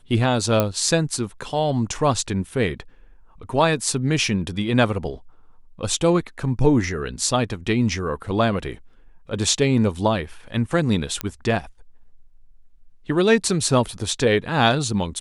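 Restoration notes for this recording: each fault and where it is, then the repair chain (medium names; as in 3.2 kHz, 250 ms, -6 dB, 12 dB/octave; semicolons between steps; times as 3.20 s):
0.60 s: pop -5 dBFS
11.21 s: pop -8 dBFS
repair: de-click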